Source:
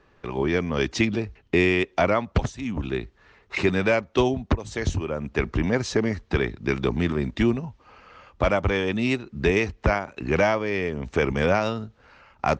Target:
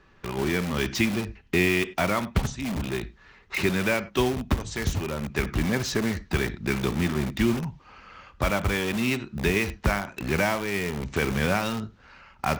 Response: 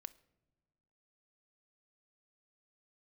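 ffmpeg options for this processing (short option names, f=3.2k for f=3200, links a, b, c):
-filter_complex "[0:a]equalizer=f=530:t=o:w=1.3:g=-6.5[a];[1:a]atrim=start_sample=2205,atrim=end_sample=3087,asetrate=28224,aresample=44100[b];[a][b]afir=irnorm=-1:irlink=0,asplit=2[c][d];[d]aeval=exprs='(mod(31.6*val(0)+1,2)-1)/31.6':c=same,volume=-6dB[e];[c][e]amix=inputs=2:normalize=0,volume=3dB"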